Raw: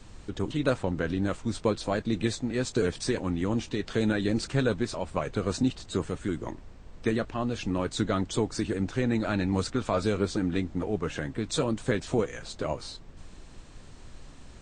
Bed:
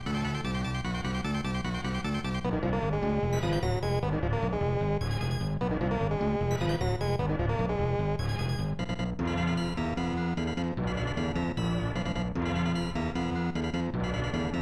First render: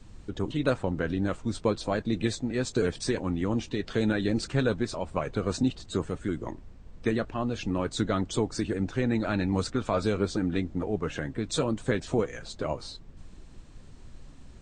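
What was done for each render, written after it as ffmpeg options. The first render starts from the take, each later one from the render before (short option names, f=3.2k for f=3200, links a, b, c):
-af "afftdn=nr=6:nf=-48"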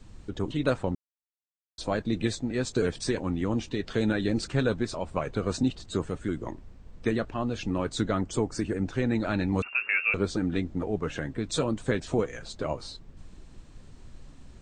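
-filter_complex "[0:a]asettb=1/sr,asplit=3[a][b][c];[a]atrim=end=8.114[d];[b]atrim=start=8.11:end=8.85,asetpts=PTS-STARTPTS,afade=t=in:d=0.004:c=qsin,afade=t=out:st=0.736:d=0.004:c=qsin,equalizer=f=3.7k:w=2.8:g=-8.5[e];[c]atrim=start=8.846[f];[d][e]acrossfade=d=0.004:c1=hsin:c2=qsin[g];[g][f]acrossfade=d=0.004:c1=qsin:c2=hsin,asettb=1/sr,asplit=3[h][i][j];[h]atrim=end=9.624[k];[i]atrim=start=9.62:end=10.14,asetpts=PTS-STARTPTS,afade=t=in:d=0.004:c=qsin,afade=t=out:st=0.516:d=0.004:c=qsin,lowpass=f=2.4k:t=q:w=0.5098,lowpass=f=2.4k:t=q:w=0.6013,lowpass=f=2.4k:t=q:w=0.9,lowpass=f=2.4k:t=q:w=2.563,afreqshift=-2800[l];[j]atrim=start=10.136[m];[k][l]acrossfade=d=0.004:c1=hsin:c2=qsin[n];[n][m]acrossfade=d=0.004:c1=qsin:c2=hsin,asplit=3[o][p][q];[o]atrim=end=0.95,asetpts=PTS-STARTPTS,afade=t=out:st=0.946:d=0.004:c=hsin[r];[p]atrim=start=0.95:end=1.78,asetpts=PTS-STARTPTS,volume=0[s];[q]atrim=start=1.78,asetpts=PTS-STARTPTS,afade=t=in:d=0.004:c=hsin[t];[r][s][t]concat=n=3:v=0:a=1"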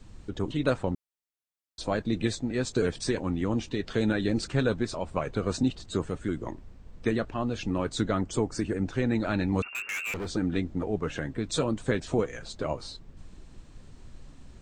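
-filter_complex "[0:a]asplit=3[a][b][c];[a]afade=t=out:st=9.68:d=0.02[d];[b]asoftclip=type=hard:threshold=-30.5dB,afade=t=in:st=9.68:d=0.02,afade=t=out:st=10.27:d=0.02[e];[c]afade=t=in:st=10.27:d=0.02[f];[d][e][f]amix=inputs=3:normalize=0"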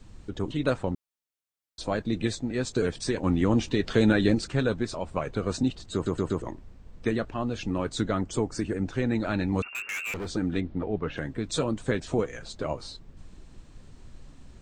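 -filter_complex "[0:a]asettb=1/sr,asplit=3[a][b][c];[a]atrim=end=3.234[d];[b]atrim=start=3.23:end=4.35,asetpts=PTS-STARTPTS,afade=t=in:d=0.004:c=qsin,afade=t=out:st=1.116:d=0.004:c=qsin,acontrast=32[e];[c]atrim=start=4.346[f];[d][e]acrossfade=d=0.004:c1=hsin:c2=qsin[g];[g][f]acrossfade=d=0.004:c1=qsin:c2=hsin,asplit=3[h][i][j];[h]afade=t=out:st=10.6:d=0.02[k];[i]lowpass=f=4.4k:w=0.5412,lowpass=f=4.4k:w=1.3066,afade=t=in:st=10.6:d=0.02,afade=t=out:st=11.16:d=0.02[l];[j]afade=t=in:st=11.16:d=0.02[m];[k][l][m]amix=inputs=3:normalize=0,asplit=5[n][o][p][q][r];[n]atrim=end=6.062[s];[o]atrim=start=5.938:end=6.062[t];[p]atrim=start=5.938:end=6.062[u];[q]atrim=start=5.938:end=6.062[v];[r]atrim=start=6.418[w];[s][t]acrossfade=d=0.004:c1=hsin:c2=hsin[x];[x][u]acrossfade=d=0.004:c1=hsin:c2=hsin[y];[y][v]acrossfade=d=0.004:c1=hsin:c2=hsin[z];[z][w]acrossfade=d=0.004:c1=hsin:c2=hsin"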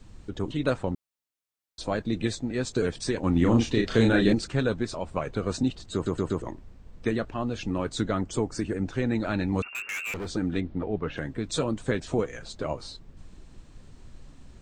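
-filter_complex "[0:a]asettb=1/sr,asplit=3[a][b][c];[a]atrim=end=3.324[d];[b]atrim=start=3.32:end=4.33,asetpts=PTS-STARTPTS,afade=t=in:d=0.004:c=qsin,afade=t=out:st=1.006:d=0.004:c=qsin,asplit=2[e][f];[f]adelay=35,volume=-3.5dB[g];[e][g]amix=inputs=2:normalize=0,atrim=end_sample=44541[h];[c]atrim=start=4.326[i];[d][h]acrossfade=d=0.004:c1=hsin:c2=qsin[j];[j][i]acrossfade=d=0.004:c1=qsin:c2=hsin"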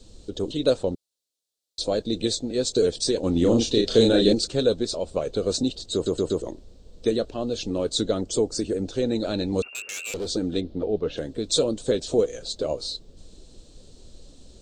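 -af "equalizer=f=125:t=o:w=1:g=-5,equalizer=f=500:t=o:w=1:g=10,equalizer=f=1k:t=o:w=1:g=-7,equalizer=f=2k:t=o:w=1:g=-11,equalizer=f=4k:t=o:w=1:g=12,equalizer=f=8k:t=o:w=1:g=7"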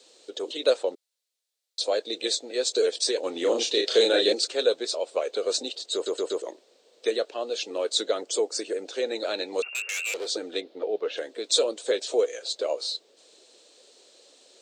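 -af "highpass=f=420:w=0.5412,highpass=f=420:w=1.3066,equalizer=f=2.1k:t=o:w=0.95:g=7"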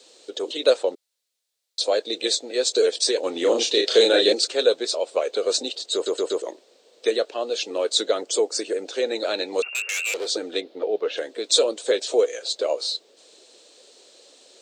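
-af "volume=4dB"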